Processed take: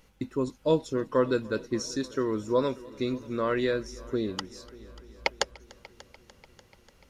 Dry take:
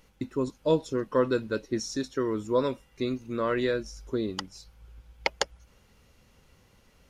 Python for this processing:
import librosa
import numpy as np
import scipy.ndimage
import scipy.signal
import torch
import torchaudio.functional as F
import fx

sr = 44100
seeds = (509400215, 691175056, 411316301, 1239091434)

y = fx.echo_heads(x, sr, ms=294, heads='first and second', feedback_pct=60, wet_db=-24)